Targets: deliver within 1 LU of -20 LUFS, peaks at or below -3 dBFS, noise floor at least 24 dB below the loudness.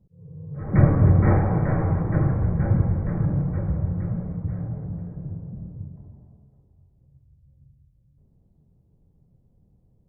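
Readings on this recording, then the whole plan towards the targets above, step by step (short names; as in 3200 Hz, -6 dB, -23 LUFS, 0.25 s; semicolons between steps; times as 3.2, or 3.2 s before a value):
loudness -23.0 LUFS; peak -3.5 dBFS; loudness target -20.0 LUFS
-> gain +3 dB; limiter -3 dBFS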